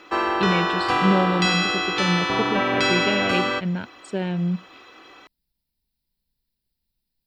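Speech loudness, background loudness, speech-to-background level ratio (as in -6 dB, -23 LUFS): -26.0 LUFS, -21.5 LUFS, -4.5 dB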